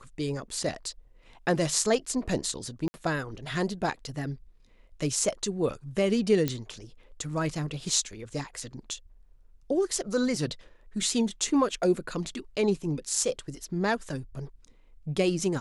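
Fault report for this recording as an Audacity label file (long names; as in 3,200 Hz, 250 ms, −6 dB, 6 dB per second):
2.880000	2.940000	drop-out 60 ms
6.480000	6.480000	click −13 dBFS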